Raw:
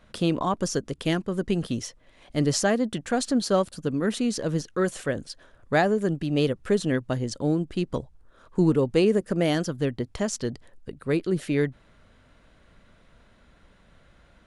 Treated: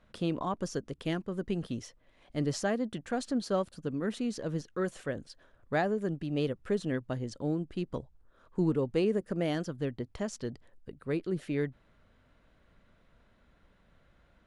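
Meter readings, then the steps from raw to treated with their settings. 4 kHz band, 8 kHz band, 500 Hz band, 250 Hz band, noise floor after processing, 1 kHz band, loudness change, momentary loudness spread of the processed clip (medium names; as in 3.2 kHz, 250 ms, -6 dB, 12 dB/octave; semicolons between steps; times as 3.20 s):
-10.5 dB, -13.0 dB, -7.5 dB, -7.5 dB, -66 dBFS, -8.0 dB, -7.5 dB, 10 LU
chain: treble shelf 4.6 kHz -7.5 dB; trim -7.5 dB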